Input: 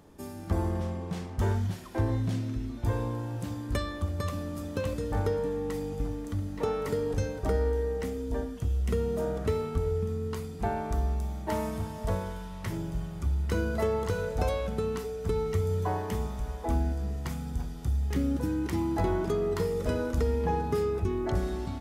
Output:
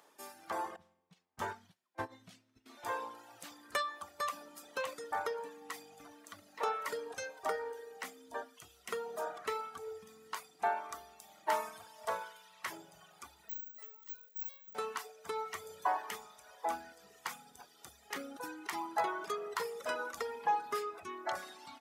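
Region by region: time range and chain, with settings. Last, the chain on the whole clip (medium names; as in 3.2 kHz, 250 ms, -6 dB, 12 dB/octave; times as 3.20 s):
0.76–2.66 s: tone controls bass +14 dB, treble -1 dB + upward expansion 2.5:1, over -27 dBFS
13.49–14.75 s: amplifier tone stack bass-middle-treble 6-0-2 + careless resampling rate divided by 2×, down none, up zero stuff
whole clip: high-pass 790 Hz 12 dB/octave; reverb removal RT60 1.6 s; dynamic bell 1.1 kHz, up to +6 dB, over -52 dBFS, Q 0.76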